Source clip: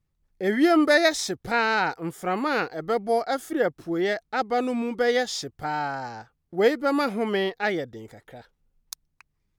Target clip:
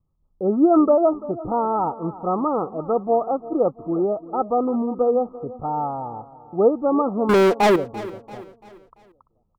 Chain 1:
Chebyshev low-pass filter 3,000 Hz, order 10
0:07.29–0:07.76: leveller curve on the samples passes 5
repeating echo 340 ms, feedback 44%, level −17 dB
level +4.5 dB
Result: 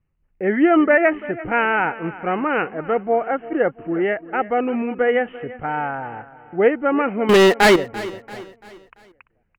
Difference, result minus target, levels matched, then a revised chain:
4,000 Hz band +8.0 dB
Chebyshev low-pass filter 1,300 Hz, order 10
0:07.29–0:07.76: leveller curve on the samples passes 5
repeating echo 340 ms, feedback 44%, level −17 dB
level +4.5 dB

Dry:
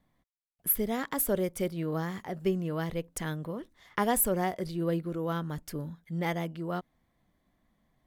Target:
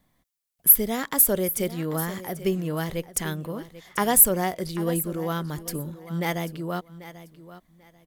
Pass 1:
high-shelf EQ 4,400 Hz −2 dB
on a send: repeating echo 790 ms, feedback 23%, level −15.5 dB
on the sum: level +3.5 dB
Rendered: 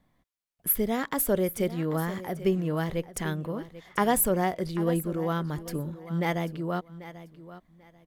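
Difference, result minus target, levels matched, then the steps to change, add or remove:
8,000 Hz band −5.0 dB
change: high-shelf EQ 4,400 Hz +10 dB

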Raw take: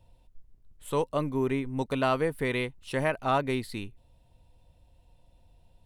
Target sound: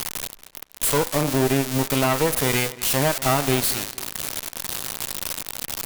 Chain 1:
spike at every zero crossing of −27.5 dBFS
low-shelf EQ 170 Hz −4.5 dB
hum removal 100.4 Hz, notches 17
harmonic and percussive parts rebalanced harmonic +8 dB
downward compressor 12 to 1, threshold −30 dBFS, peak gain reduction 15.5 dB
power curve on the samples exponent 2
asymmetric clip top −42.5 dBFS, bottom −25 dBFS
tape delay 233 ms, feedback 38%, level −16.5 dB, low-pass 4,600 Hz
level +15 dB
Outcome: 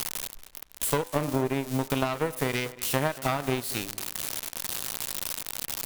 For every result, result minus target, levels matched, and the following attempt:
downward compressor: peak gain reduction +10 dB; spike at every zero crossing: distortion −6 dB
spike at every zero crossing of −27.5 dBFS
low-shelf EQ 170 Hz −4.5 dB
hum removal 100.4 Hz, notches 17
harmonic and percussive parts rebalanced harmonic +8 dB
downward compressor 12 to 1, threshold −19 dBFS, peak gain reduction 5.5 dB
power curve on the samples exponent 2
asymmetric clip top −42.5 dBFS, bottom −25 dBFS
tape delay 233 ms, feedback 38%, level −16.5 dB, low-pass 4,600 Hz
level +15 dB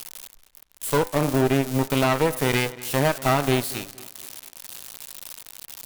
spike at every zero crossing: distortion −6 dB
spike at every zero crossing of −21 dBFS
low-shelf EQ 170 Hz −4.5 dB
hum removal 100.4 Hz, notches 17
harmonic and percussive parts rebalanced harmonic +8 dB
downward compressor 12 to 1, threshold −19 dBFS, peak gain reduction 5.5 dB
power curve on the samples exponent 2
asymmetric clip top −42.5 dBFS, bottom −25 dBFS
tape delay 233 ms, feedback 38%, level −16.5 dB, low-pass 4,600 Hz
level +15 dB

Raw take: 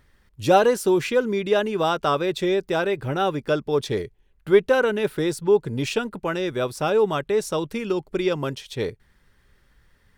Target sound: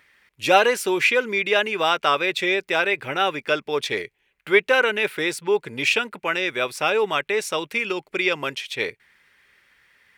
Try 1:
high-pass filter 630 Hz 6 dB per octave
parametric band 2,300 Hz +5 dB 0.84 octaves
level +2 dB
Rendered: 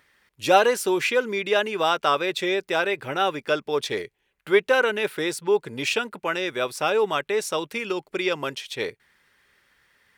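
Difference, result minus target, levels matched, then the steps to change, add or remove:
2,000 Hz band −2.5 dB
change: parametric band 2,300 Hz +12.5 dB 0.84 octaves

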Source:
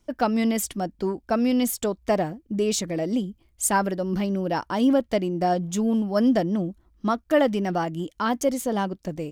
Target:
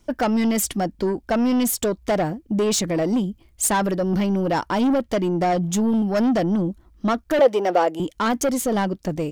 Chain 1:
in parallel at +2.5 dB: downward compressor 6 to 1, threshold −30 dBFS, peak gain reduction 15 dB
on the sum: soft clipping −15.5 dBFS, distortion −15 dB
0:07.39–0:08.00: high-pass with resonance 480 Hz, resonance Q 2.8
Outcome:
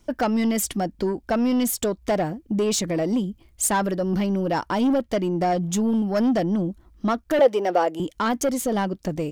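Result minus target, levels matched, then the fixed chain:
downward compressor: peak gain reduction +8.5 dB
in parallel at +2.5 dB: downward compressor 6 to 1, threshold −20 dBFS, peak gain reduction 6.5 dB
on the sum: soft clipping −15.5 dBFS, distortion −12 dB
0:07.39–0:08.00: high-pass with resonance 480 Hz, resonance Q 2.8

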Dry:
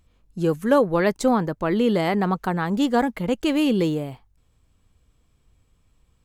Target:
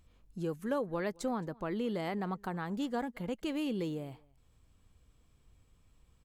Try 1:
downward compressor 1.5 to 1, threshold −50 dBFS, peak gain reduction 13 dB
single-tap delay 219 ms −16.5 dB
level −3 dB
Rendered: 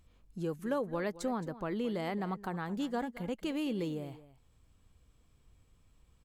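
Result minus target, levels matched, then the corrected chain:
echo-to-direct +9.5 dB
downward compressor 1.5 to 1, threshold −50 dBFS, peak gain reduction 13 dB
single-tap delay 219 ms −26 dB
level −3 dB

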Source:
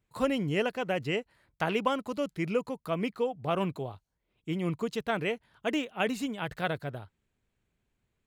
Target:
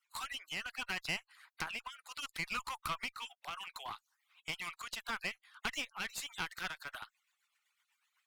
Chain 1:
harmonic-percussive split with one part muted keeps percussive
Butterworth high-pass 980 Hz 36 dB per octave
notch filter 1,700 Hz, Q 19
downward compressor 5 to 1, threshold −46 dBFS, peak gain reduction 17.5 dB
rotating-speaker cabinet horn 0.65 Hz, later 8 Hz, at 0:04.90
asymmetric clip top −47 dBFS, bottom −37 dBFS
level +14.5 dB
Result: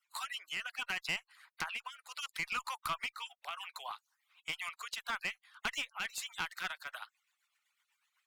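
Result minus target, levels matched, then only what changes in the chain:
asymmetric clip: distortion −5 dB
change: asymmetric clip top −54.5 dBFS, bottom −37 dBFS

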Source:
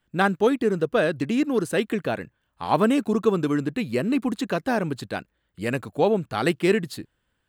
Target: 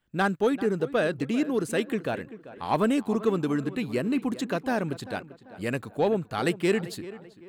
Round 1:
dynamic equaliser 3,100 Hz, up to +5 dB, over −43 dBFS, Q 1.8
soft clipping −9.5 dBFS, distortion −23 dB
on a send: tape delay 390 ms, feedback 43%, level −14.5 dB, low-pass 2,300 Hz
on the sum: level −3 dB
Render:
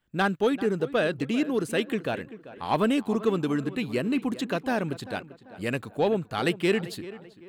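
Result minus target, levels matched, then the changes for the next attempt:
4,000 Hz band +3.0 dB
change: dynamic equaliser 7,100 Hz, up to +5 dB, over −43 dBFS, Q 1.8

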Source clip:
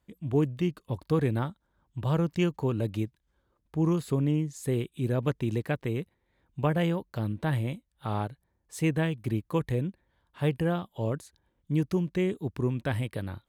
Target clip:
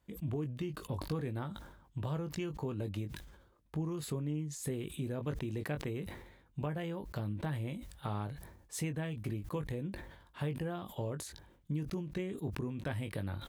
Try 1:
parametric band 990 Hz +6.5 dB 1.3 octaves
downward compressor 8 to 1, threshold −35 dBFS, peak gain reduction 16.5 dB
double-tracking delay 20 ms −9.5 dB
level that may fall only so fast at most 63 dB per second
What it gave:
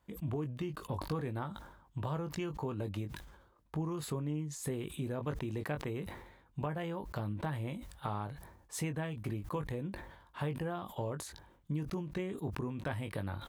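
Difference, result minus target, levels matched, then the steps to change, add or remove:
1,000 Hz band +4.0 dB
remove: parametric band 990 Hz +6.5 dB 1.3 octaves

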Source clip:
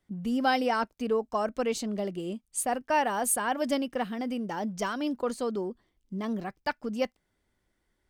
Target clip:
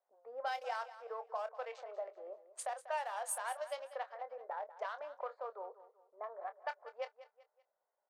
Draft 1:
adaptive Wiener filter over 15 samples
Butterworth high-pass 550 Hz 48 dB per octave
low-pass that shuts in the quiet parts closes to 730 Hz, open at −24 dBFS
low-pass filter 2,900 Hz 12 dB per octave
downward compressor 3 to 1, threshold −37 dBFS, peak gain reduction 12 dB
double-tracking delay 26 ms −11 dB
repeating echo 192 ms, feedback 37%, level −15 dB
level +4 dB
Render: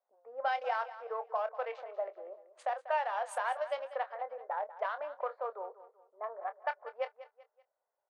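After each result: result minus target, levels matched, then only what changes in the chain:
downward compressor: peak gain reduction −6.5 dB; 4,000 Hz band −4.0 dB
change: downward compressor 3 to 1, threshold −46.5 dBFS, peak gain reduction 18 dB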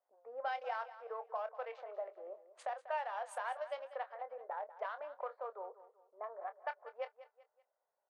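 4,000 Hz band −4.0 dB
remove: low-pass filter 2,900 Hz 12 dB per octave

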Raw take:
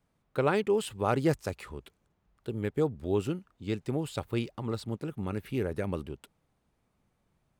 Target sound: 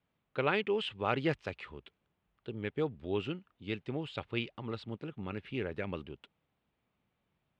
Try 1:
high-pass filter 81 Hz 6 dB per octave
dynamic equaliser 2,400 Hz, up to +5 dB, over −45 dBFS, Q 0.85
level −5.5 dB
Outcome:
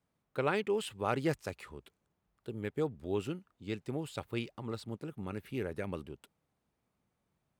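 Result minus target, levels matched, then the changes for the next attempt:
4,000 Hz band −4.0 dB
add after dynamic equaliser: low-pass with resonance 3,100 Hz, resonance Q 2

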